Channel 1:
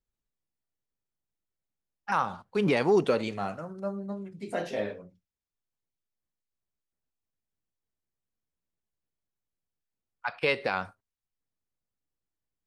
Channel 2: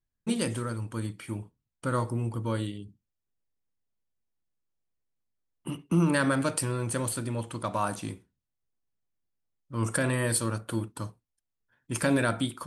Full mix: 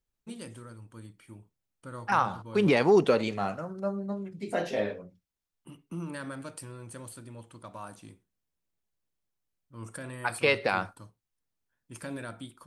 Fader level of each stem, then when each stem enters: +2.0 dB, -13.5 dB; 0.00 s, 0.00 s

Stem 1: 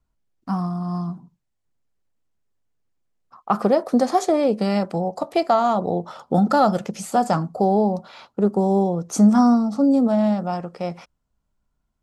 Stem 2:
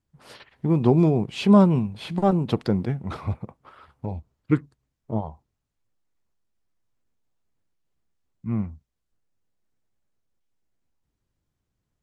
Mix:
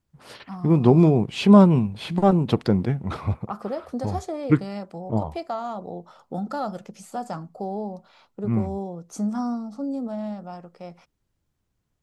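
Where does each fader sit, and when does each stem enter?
-12.0 dB, +2.5 dB; 0.00 s, 0.00 s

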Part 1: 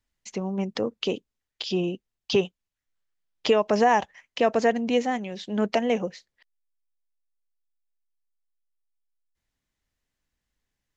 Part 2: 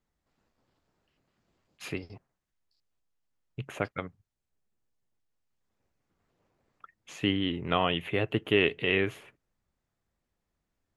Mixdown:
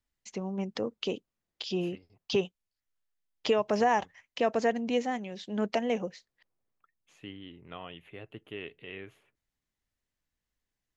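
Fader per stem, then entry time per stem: -5.5 dB, -17.0 dB; 0.00 s, 0.00 s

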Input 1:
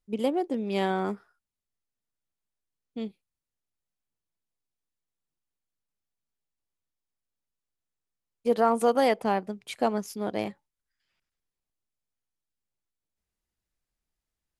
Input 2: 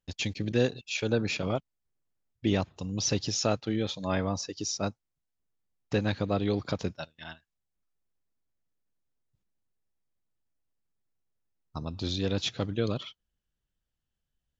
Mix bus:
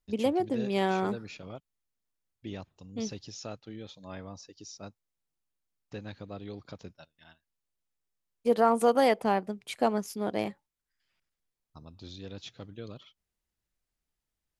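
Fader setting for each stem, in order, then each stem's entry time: -0.5 dB, -13.5 dB; 0.00 s, 0.00 s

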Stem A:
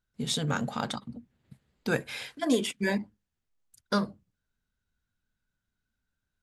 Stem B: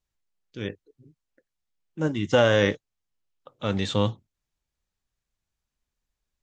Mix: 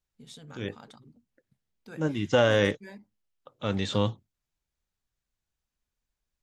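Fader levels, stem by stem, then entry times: -18.0 dB, -2.5 dB; 0.00 s, 0.00 s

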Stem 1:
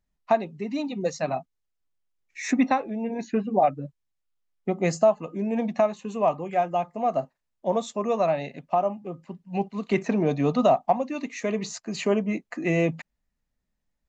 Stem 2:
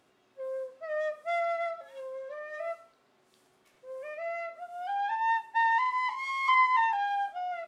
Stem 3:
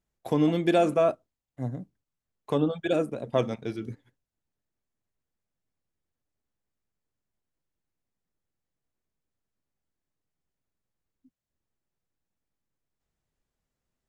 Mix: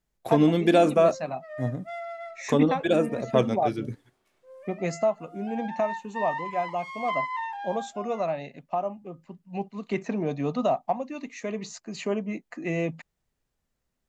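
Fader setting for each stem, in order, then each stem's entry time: -5.0 dB, -6.5 dB, +3.0 dB; 0.00 s, 0.60 s, 0.00 s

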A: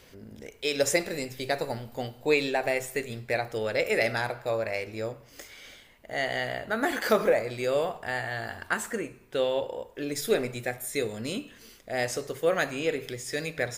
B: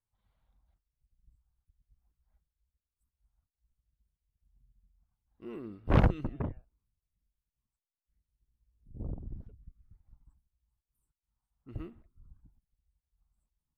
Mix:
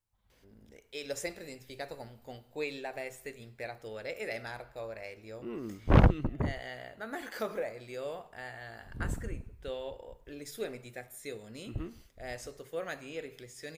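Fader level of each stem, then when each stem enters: -12.5 dB, +3.0 dB; 0.30 s, 0.00 s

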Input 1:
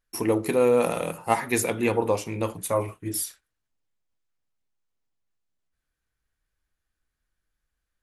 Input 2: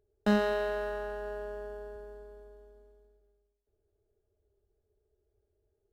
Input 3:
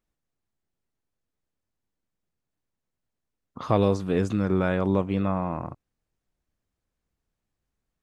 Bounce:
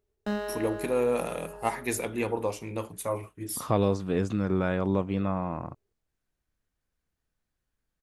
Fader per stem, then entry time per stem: -6.0 dB, -5.0 dB, -3.0 dB; 0.35 s, 0.00 s, 0.00 s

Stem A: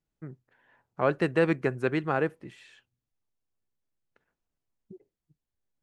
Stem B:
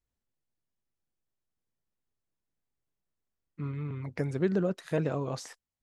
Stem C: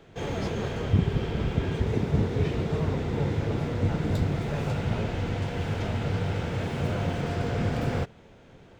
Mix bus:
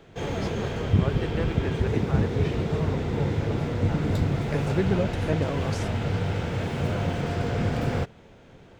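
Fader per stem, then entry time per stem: -9.0 dB, +2.0 dB, +1.5 dB; 0.00 s, 0.35 s, 0.00 s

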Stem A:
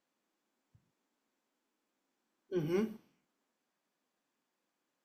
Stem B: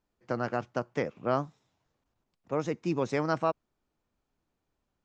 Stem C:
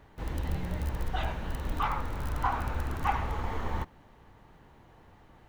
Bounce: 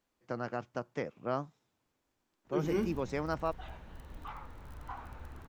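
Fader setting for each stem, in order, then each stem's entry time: +1.0 dB, -6.0 dB, -15.0 dB; 0.00 s, 0.00 s, 2.45 s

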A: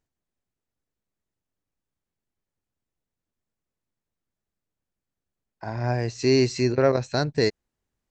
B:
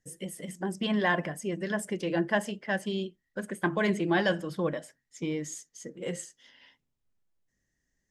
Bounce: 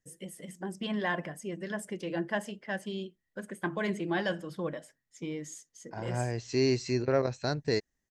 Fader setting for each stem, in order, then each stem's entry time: -7.0 dB, -5.0 dB; 0.30 s, 0.00 s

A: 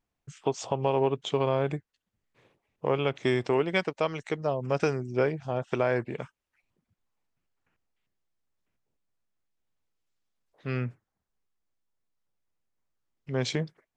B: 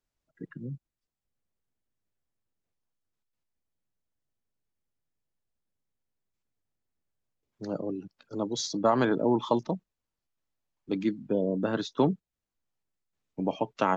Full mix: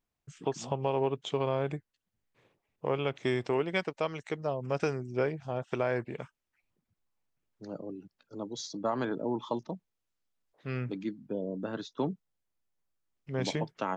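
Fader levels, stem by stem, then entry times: -4.0 dB, -7.5 dB; 0.00 s, 0.00 s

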